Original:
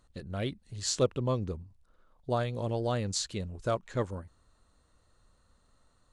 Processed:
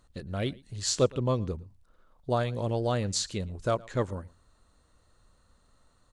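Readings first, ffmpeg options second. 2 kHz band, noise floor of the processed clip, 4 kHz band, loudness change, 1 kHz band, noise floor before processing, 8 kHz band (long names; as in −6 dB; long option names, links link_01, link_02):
+2.5 dB, −66 dBFS, +2.5 dB, +2.5 dB, +2.5 dB, −68 dBFS, +2.5 dB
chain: -af "aecho=1:1:114:0.0668,volume=2.5dB"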